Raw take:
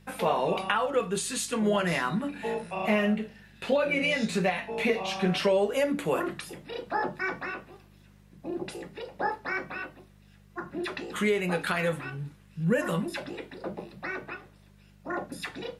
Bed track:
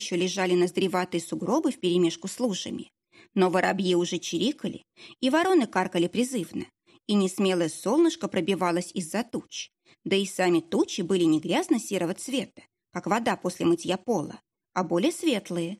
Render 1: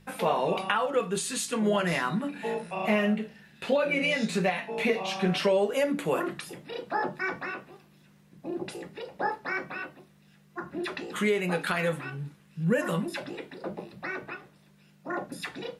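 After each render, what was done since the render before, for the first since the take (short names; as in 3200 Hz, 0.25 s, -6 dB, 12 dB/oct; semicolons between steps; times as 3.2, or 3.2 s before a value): de-hum 50 Hz, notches 2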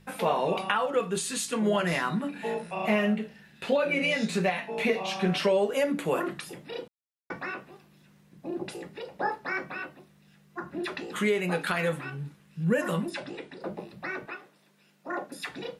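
6.88–7.3 mute; 13.1–13.61 elliptic low-pass 9700 Hz; 14.26–15.49 HPF 270 Hz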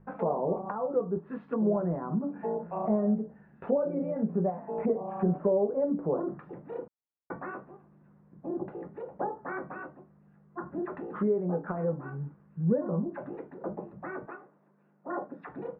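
LPF 1300 Hz 24 dB/oct; treble ducked by the level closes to 650 Hz, closed at -26.5 dBFS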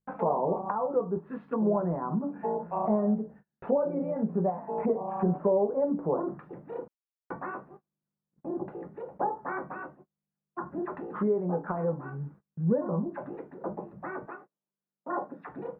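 gate -49 dBFS, range -31 dB; dynamic EQ 940 Hz, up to +7 dB, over -48 dBFS, Q 2.3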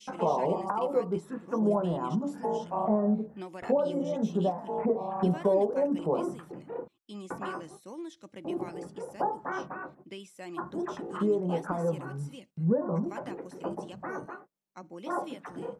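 add bed track -19.5 dB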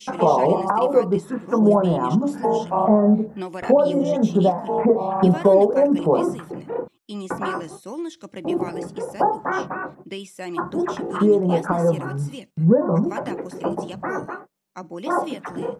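gain +10.5 dB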